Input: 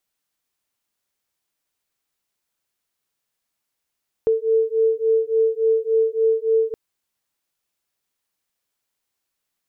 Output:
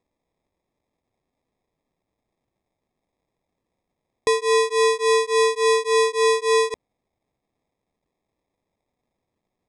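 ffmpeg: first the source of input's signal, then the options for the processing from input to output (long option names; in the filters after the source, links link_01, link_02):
-f lavfi -i "aevalsrc='0.112*(sin(2*PI*445*t)+sin(2*PI*448.5*t))':duration=2.47:sample_rate=44100"
-af "acrusher=samples=30:mix=1:aa=0.000001,aresample=22050,aresample=44100"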